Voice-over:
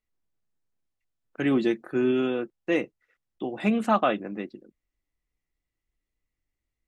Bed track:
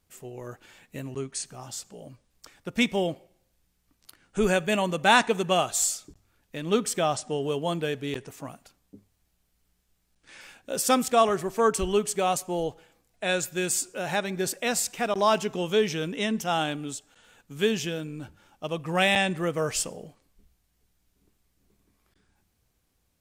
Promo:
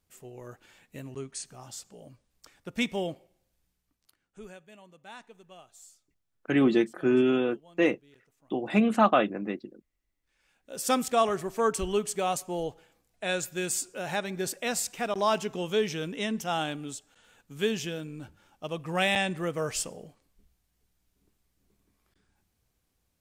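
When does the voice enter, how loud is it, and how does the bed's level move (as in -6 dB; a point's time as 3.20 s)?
5.10 s, +1.0 dB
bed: 3.69 s -5 dB
4.67 s -27.5 dB
10.35 s -27.5 dB
10.89 s -3.5 dB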